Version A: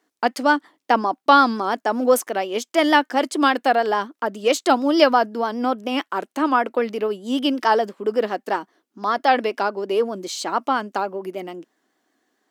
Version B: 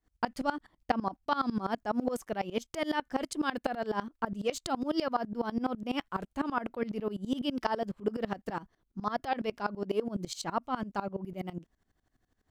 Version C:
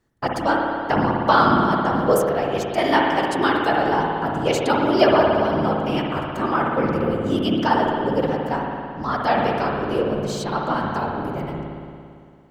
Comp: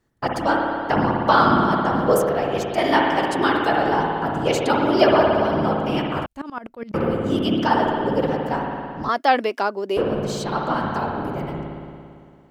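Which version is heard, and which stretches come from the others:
C
0:06.26–0:06.94: punch in from B
0:09.09–0:09.97: punch in from A

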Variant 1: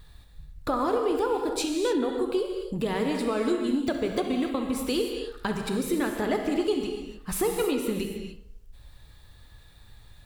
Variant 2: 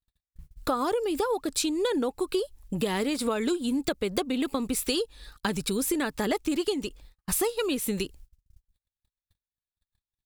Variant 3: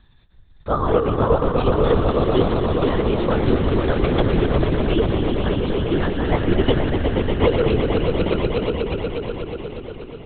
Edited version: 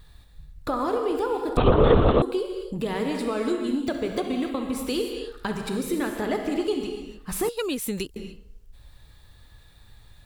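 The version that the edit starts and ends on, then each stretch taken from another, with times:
1
0:01.57–0:02.22: punch in from 3
0:07.49–0:08.16: punch in from 2

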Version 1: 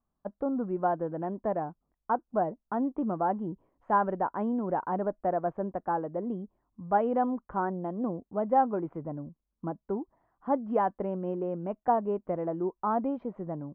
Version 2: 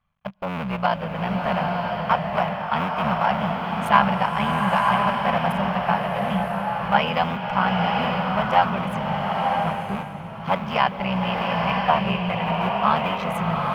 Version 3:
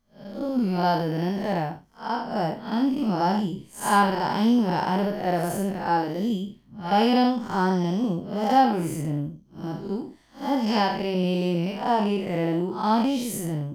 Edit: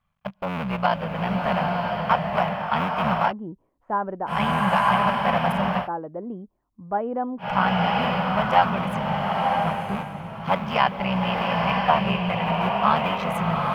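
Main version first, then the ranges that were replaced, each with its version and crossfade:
2
0:03.30–0:04.29: punch in from 1, crossfade 0.06 s
0:05.84–0:07.43: punch in from 1, crossfade 0.10 s
not used: 3

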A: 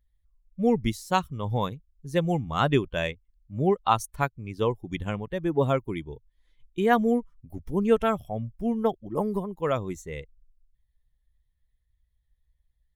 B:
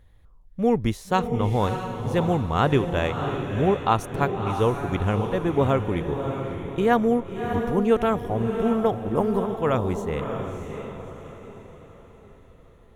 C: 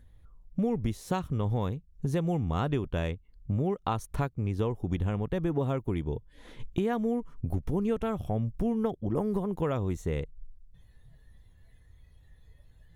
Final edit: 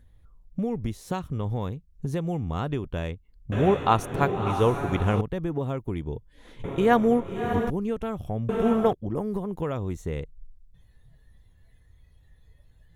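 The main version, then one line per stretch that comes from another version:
C
0:03.52–0:05.21: punch in from B
0:06.64–0:07.70: punch in from B
0:08.49–0:08.93: punch in from B
not used: A

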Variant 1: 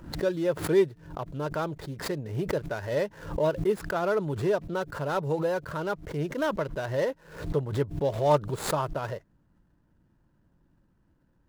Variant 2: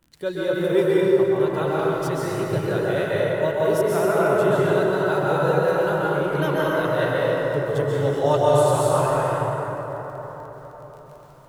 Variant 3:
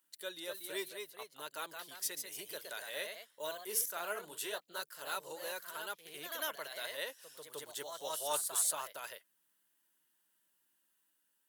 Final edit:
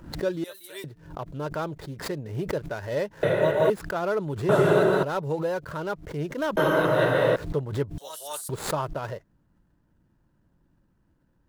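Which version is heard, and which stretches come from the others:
1
0:00.44–0:00.84: punch in from 3
0:03.23–0:03.70: punch in from 2
0:04.49–0:05.03: punch in from 2
0:06.57–0:07.36: punch in from 2
0:07.98–0:08.49: punch in from 3

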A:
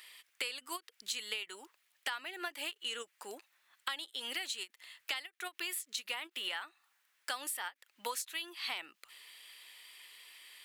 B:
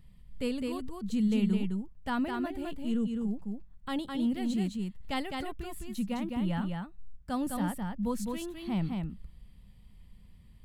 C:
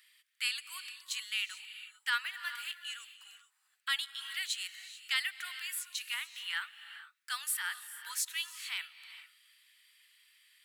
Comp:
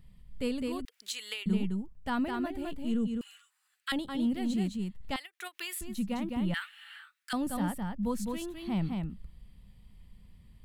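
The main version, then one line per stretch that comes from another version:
B
0:00.85–0:01.46: punch in from A
0:03.21–0:03.92: punch in from C
0:05.16–0:05.81: punch in from A
0:06.54–0:07.33: punch in from C

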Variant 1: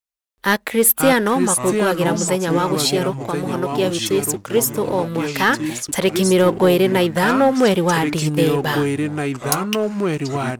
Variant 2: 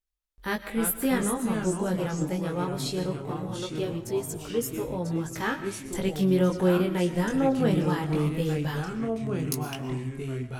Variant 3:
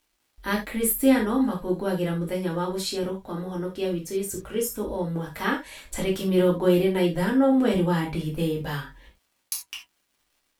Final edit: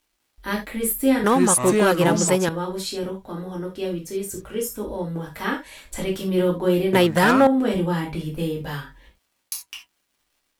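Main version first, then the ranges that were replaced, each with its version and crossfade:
3
0:01.24–0:02.49: punch in from 1
0:06.93–0:07.47: punch in from 1
not used: 2

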